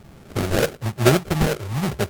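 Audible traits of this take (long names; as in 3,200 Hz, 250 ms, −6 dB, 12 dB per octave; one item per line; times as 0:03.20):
phaser sweep stages 6, 1.1 Hz, lowest notch 240–1,100 Hz
aliases and images of a low sample rate 1,000 Hz, jitter 20%
MP3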